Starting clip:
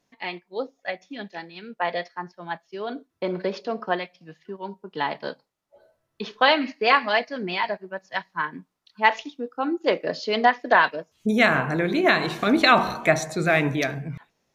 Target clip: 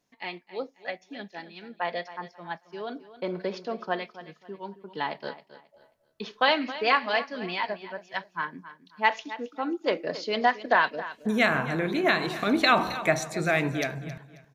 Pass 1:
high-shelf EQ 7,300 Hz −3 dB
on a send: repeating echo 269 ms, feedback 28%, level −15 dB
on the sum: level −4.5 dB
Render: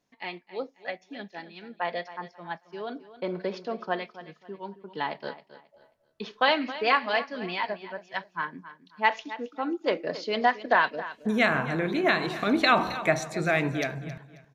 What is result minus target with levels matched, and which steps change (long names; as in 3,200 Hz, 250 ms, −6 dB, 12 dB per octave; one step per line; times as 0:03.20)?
8,000 Hz band −2.5 dB
change: high-shelf EQ 7,300 Hz +4 dB